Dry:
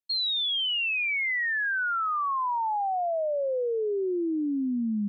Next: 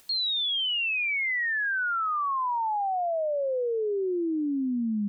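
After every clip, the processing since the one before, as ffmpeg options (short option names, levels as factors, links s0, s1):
-af "acompressor=mode=upward:threshold=0.0282:ratio=2.5"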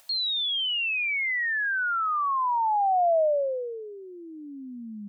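-af "lowshelf=f=490:t=q:w=3:g=-8.5"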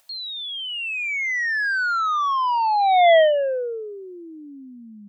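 -af "dynaudnorm=f=340:g=7:m=3.98,aeval=exprs='0.501*(cos(1*acos(clip(val(0)/0.501,-1,1)))-cos(1*PI/2))+0.158*(cos(3*acos(clip(val(0)/0.501,-1,1)))-cos(3*PI/2))+0.0708*(cos(5*acos(clip(val(0)/0.501,-1,1)))-cos(5*PI/2))':c=same,volume=0.794"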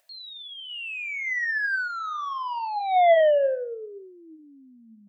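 -af "superequalizer=7b=1.58:8b=3.16:11b=2:12b=1.41,apsyclip=1.41,flanger=delay=6:depth=9.5:regen=74:speed=0.72:shape=triangular,volume=0.398"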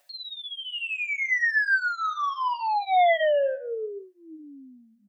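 -filter_complex "[0:a]aecho=1:1:7:0.99,acrossover=split=920[s0][s1];[s0]alimiter=limit=0.0841:level=0:latency=1:release=151[s2];[s2][s1]amix=inputs=2:normalize=0"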